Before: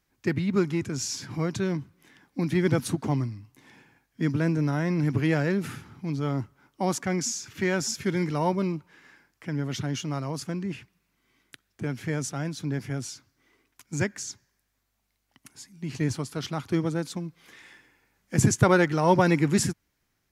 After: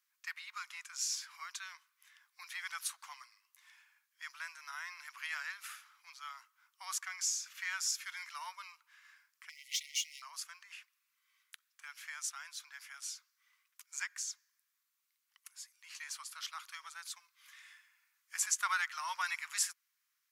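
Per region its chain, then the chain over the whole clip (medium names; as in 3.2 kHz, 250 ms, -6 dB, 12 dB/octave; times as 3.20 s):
9.49–10.22 s: waveshaping leveller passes 2 + brick-wall FIR high-pass 1.9 kHz
whole clip: elliptic high-pass 1.1 kHz, stop band 70 dB; treble shelf 6.9 kHz +7.5 dB; trim -6.5 dB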